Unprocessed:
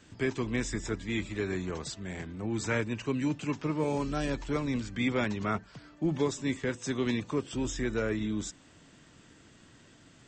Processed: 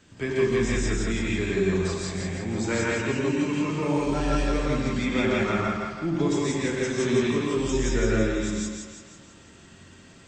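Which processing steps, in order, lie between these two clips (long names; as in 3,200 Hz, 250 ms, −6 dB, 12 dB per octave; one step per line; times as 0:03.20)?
echo with a time of its own for lows and highs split 450 Hz, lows 89 ms, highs 165 ms, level −4 dB
reverb whose tail is shaped and stops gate 200 ms rising, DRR −3.5 dB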